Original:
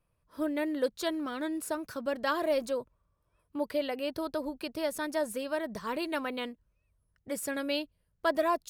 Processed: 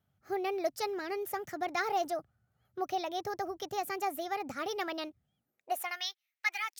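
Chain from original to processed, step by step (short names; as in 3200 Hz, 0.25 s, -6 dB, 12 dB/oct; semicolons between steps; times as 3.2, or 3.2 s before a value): high-pass sweep 78 Hz -> 1700 Hz, 6.63–7.78; varispeed +28%; gain -2.5 dB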